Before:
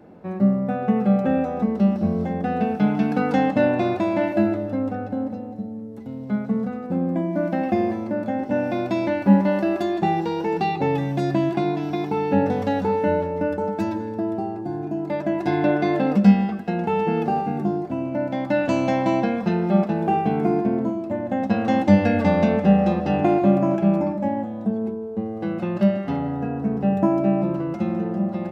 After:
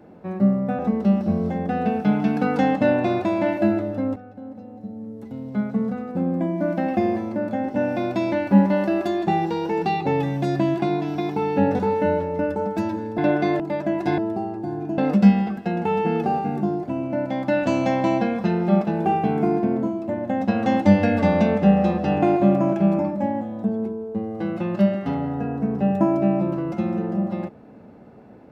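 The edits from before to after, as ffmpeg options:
-filter_complex "[0:a]asplit=8[s0][s1][s2][s3][s4][s5][s6][s7];[s0]atrim=end=0.792[s8];[s1]atrim=start=1.538:end=4.91,asetpts=PTS-STARTPTS,afade=t=out:st=3.368:d=0.004:c=hsin:silence=0.211349[s9];[s2]atrim=start=4.91:end=12.542,asetpts=PTS-STARTPTS,afade=t=in:d=0.95:c=qua:silence=0.211349[s10];[s3]atrim=start=12.808:end=14.202[s11];[s4]atrim=start=15.578:end=16.002[s12];[s5]atrim=start=14.998:end=15.582[s13];[s6]atrim=start=14.198:end=15.002[s14];[s7]atrim=start=15.998[s15];[s9][s10]concat=n=2:v=0:a=1[s16];[s8][s16]acrossfade=d=0.004:c1=hsin:c2=hsin[s17];[s17][s11]acrossfade=d=0.004:c1=hsin:c2=hsin[s18];[s18][s12]acrossfade=d=0.004:c1=hsin:c2=hsin[s19];[s19][s13]acrossfade=d=0.004:c1=hsin:c2=hsin[s20];[s20][s14]acrossfade=d=0.004:c1=hsin:c2=hsin[s21];[s21][s15]acrossfade=d=0.004:c1=hsin:c2=hsin"

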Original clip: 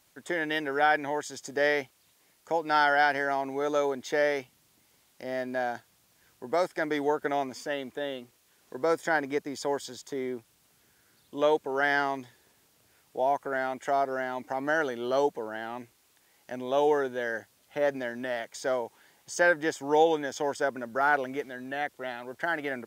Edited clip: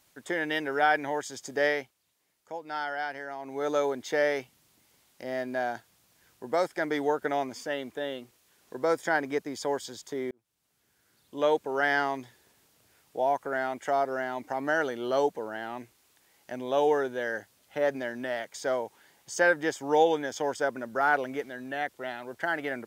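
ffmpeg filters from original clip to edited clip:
-filter_complex "[0:a]asplit=4[s0][s1][s2][s3];[s0]atrim=end=1.94,asetpts=PTS-STARTPTS,afade=t=out:st=1.65:d=0.29:silence=0.316228[s4];[s1]atrim=start=1.94:end=3.39,asetpts=PTS-STARTPTS,volume=0.316[s5];[s2]atrim=start=3.39:end=10.31,asetpts=PTS-STARTPTS,afade=t=in:d=0.29:silence=0.316228,afade=t=out:st=6.916:d=0.004:c=hsin[s6];[s3]atrim=start=10.31,asetpts=PTS-STARTPTS,afade=t=in:d=1.25[s7];[s4][s5][s6][s7]concat=n=4:v=0:a=1"

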